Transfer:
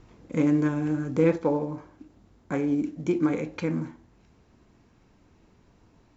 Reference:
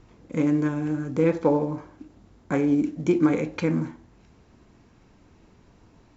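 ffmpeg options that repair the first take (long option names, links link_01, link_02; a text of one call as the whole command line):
ffmpeg -i in.wav -af "asetnsamples=nb_out_samples=441:pad=0,asendcmd='1.36 volume volume 4dB',volume=0dB" out.wav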